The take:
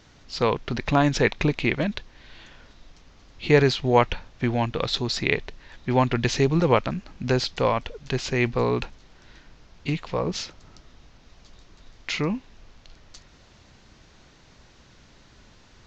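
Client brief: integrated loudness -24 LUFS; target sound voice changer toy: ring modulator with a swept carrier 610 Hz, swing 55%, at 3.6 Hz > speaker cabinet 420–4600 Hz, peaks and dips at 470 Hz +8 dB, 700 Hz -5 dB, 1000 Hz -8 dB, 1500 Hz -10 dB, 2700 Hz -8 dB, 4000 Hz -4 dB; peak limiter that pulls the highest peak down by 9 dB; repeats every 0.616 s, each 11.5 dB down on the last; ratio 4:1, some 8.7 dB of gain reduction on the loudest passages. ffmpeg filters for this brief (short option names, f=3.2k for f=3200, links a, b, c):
-af "acompressor=threshold=-22dB:ratio=4,alimiter=limit=-17.5dB:level=0:latency=1,aecho=1:1:616|1232|1848:0.266|0.0718|0.0194,aeval=exprs='val(0)*sin(2*PI*610*n/s+610*0.55/3.6*sin(2*PI*3.6*n/s))':c=same,highpass=420,equalizer=f=470:t=q:w=4:g=8,equalizer=f=700:t=q:w=4:g=-5,equalizer=f=1k:t=q:w=4:g=-8,equalizer=f=1.5k:t=q:w=4:g=-10,equalizer=f=2.7k:t=q:w=4:g=-8,equalizer=f=4k:t=q:w=4:g=-4,lowpass=f=4.6k:w=0.5412,lowpass=f=4.6k:w=1.3066,volume=12.5dB"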